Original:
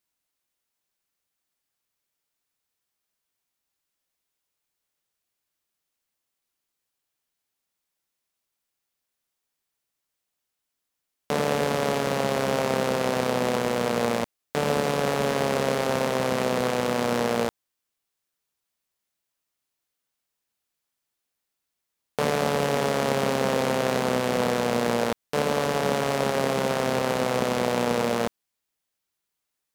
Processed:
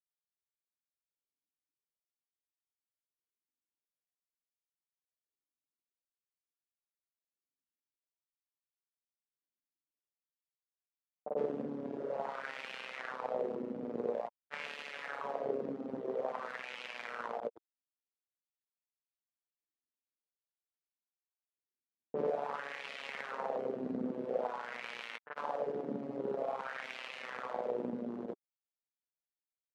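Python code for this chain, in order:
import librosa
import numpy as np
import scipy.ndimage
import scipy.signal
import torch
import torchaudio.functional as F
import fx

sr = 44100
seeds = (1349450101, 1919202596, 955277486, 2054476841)

y = fx.env_lowpass(x, sr, base_hz=360.0, full_db=-20.0)
y = fx.dereverb_blind(y, sr, rt60_s=1.1)
y = fx.granulator(y, sr, seeds[0], grain_ms=100.0, per_s=20.0, spray_ms=100.0, spread_st=0)
y = fx.wah_lfo(y, sr, hz=0.49, low_hz=260.0, high_hz=2600.0, q=2.9)
y = y * 10.0 ** (-1.5 / 20.0)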